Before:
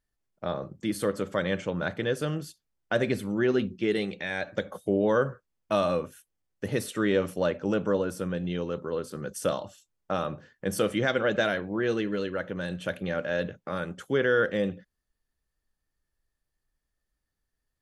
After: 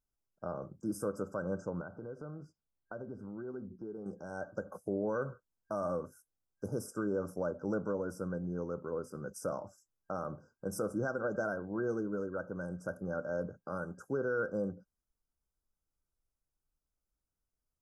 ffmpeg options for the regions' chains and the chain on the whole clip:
ffmpeg -i in.wav -filter_complex "[0:a]asettb=1/sr,asplit=3[link_01][link_02][link_03];[link_01]atrim=end=1.814[link_04];[link_02]atrim=start=1.81:end=4.06,asetpts=PTS-STARTPTS,afade=type=in:duration=0.004:curve=qsin,afade=type=out:start_time=2.246:duration=0.004:curve=qsin,lowpass=2200,acompressor=threshold=-36dB:ratio=3:attack=3.2:release=140:knee=1:detection=peak[link_05];[link_03]atrim=start=4.056[link_06];[link_04][link_05]acrossfade=duration=0.004:curve1=hsin:curve2=qsin[link_07];[link_07][link_06]acrossfade=duration=0.004:curve1=qsin:curve2=hsin,afftfilt=real='re*(1-between(b*sr/4096,1600,4800))':imag='im*(1-between(b*sr/4096,1600,4800))':win_size=4096:overlap=0.75,alimiter=limit=-18.5dB:level=0:latency=1:release=105,adynamicequalizer=threshold=0.002:dfrequency=5000:dqfactor=0.7:tfrequency=5000:tqfactor=0.7:attack=5:release=100:ratio=0.375:range=2.5:mode=cutabove:tftype=highshelf,volume=-6.5dB" out.wav

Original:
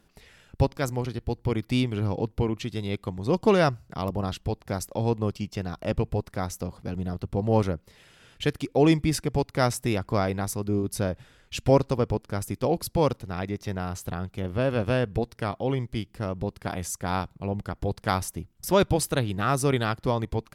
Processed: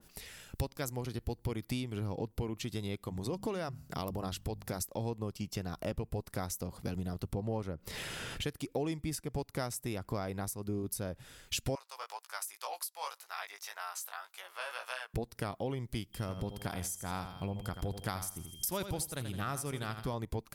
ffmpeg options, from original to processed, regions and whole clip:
ffmpeg -i in.wav -filter_complex "[0:a]asettb=1/sr,asplit=3[link_01][link_02][link_03];[link_01]atrim=end=3.034[link_04];[link_02]atrim=start=3.03:end=4.82,asetpts=PTS-STARTPTS,afade=type=in:duration=0.004:curve=qsin,afade=type=out:start_time=1.786:duration=0.004:curve=qsin,bandreject=frequency=50:width_type=h:width=6,bandreject=frequency=100:width_type=h:width=6,bandreject=frequency=150:width_type=h:width=6,bandreject=frequency=200:width_type=h:width=6,bandreject=frequency=250:width_type=h:width=6,acompressor=threshold=-34dB:ratio=1.5:attack=3.2:release=140:knee=1:detection=peak[link_05];[link_03]atrim=start=4.816[link_06];[link_04][link_05]acrossfade=duration=0.004:curve1=hsin:curve2=qsin[link_07];[link_07][link_06]acrossfade=duration=0.004:curve1=qsin:curve2=hsin,asettb=1/sr,asplit=3[link_08][link_09][link_10];[link_08]atrim=end=7.334[link_11];[link_09]atrim=start=7.33:end=8.43,asetpts=PTS-STARTPTS,afade=type=in:duration=0.004:curve=qsin,afade=type=out:start_time=1.096:duration=0.004:curve=qsin,highshelf=frequency=4600:gain=-9,acompressor=mode=upward:threshold=-29dB:ratio=2.5:attack=3.2:release=140:knee=2.83:detection=peak[link_12];[link_10]atrim=start=8.426[link_13];[link_11][link_12]acrossfade=duration=0.004:curve1=hsin:curve2=qsin[link_14];[link_14][link_13]acrossfade=duration=0.004:curve1=qsin:curve2=hsin,asettb=1/sr,asplit=3[link_15][link_16][link_17];[link_15]atrim=end=11.754[link_18];[link_16]atrim=start=11.75:end=15.14,asetpts=PTS-STARTPTS,afade=type=in:duration=0.004:curve=qsin,afade=type=out:start_time=3.386:duration=0.004:curve=qsin,highpass=frequency=900:width=0.5412,highpass=frequency=900:width=1.3066,flanger=delay=15.5:depth=4.4:speed=1.9[link_19];[link_17]atrim=start=15.136[link_20];[link_18][link_19]acrossfade=duration=0.004:curve1=hsin:curve2=qsin[link_21];[link_21][link_20]acrossfade=duration=0.004:curve1=qsin:curve2=hsin,asettb=1/sr,asplit=3[link_22][link_23][link_24];[link_22]atrim=end=16.134[link_25];[link_23]atrim=start=16.13:end=20.14,asetpts=PTS-STARTPTS,afade=type=in:duration=0.004:curve=qsin,afade=type=out:start_time=4.006:duration=0.004:curve=qsin,equalizer=frequency=460:width_type=o:width=2:gain=-4,aecho=1:1:82|164|246|328:0.282|0.101|0.0365|0.0131,atrim=end_sample=176841,aeval=exprs='val(0)+0.00178*sin(2*PI*3200*n/s)':channel_layout=same[link_26];[link_24]atrim=start=20.136[link_27];[link_25][link_26]acrossfade=duration=0.004:curve1=hsin:curve2=qsin[link_28];[link_28][link_27]acrossfade=duration=0.004:curve1=qsin:curve2=hsin,aemphasis=mode=production:type=75kf,acompressor=threshold=-33dB:ratio=6,adynamicequalizer=threshold=0.002:dfrequency=1900:dqfactor=0.7:tfrequency=1900:tqfactor=0.7:attack=5:release=100:ratio=0.375:range=3:mode=cutabove:tftype=highshelf" out.wav

